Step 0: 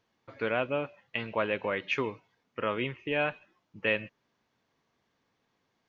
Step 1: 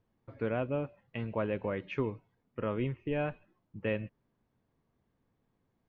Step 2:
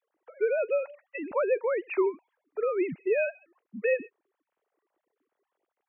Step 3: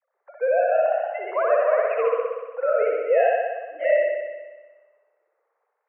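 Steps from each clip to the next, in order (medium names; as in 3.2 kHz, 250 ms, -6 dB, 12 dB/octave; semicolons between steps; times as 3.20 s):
tilt EQ -4 dB/octave; trim -6.5 dB
formants replaced by sine waves; trim +6 dB
ever faster or slower copies 186 ms, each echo +1 st, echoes 3, each echo -6 dB; mistuned SSB +74 Hz 400–2100 Hz; spring tank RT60 1.3 s, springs 59 ms, chirp 70 ms, DRR -1.5 dB; trim +3.5 dB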